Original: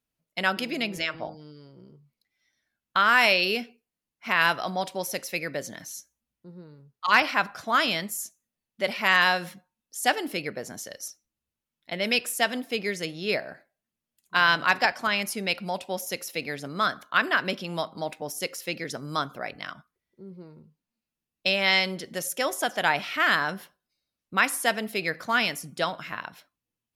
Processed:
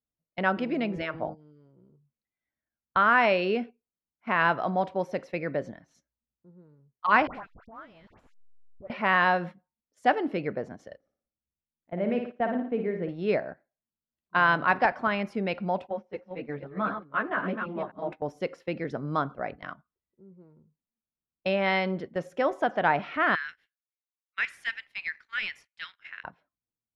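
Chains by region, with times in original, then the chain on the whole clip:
7.27–8.9 level-crossing sampler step -30.5 dBFS + dispersion highs, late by 82 ms, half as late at 1500 Hz + compressor, threshold -38 dBFS
10.97–13.09 tape spacing loss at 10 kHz 45 dB + flutter echo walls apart 9.8 m, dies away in 0.54 s
15.87–18.12 reverse delay 0.254 s, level -6.5 dB + air absorption 280 m + ensemble effect
23.35–26.24 steep high-pass 1800 Hz + sample leveller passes 1
whole clip: gate -38 dBFS, range -12 dB; Bessel low-pass 1100 Hz, order 2; bell 63 Hz +4 dB; gain +3.5 dB

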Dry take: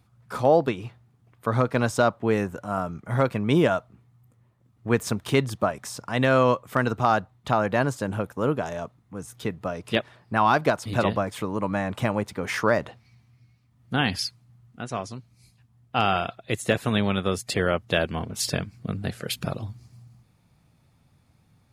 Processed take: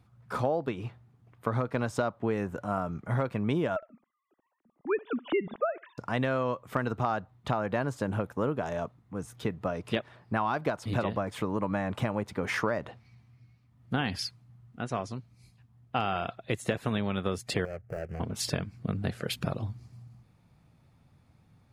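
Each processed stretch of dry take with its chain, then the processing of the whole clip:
3.76–5.98 sine-wave speech + feedback echo 66 ms, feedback 17%, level -23.5 dB
17.65–18.2 median filter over 41 samples + fixed phaser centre 990 Hz, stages 6 + compressor 4:1, threshold -32 dBFS
whole clip: high shelf 3800 Hz -8 dB; compressor, threshold -25 dBFS

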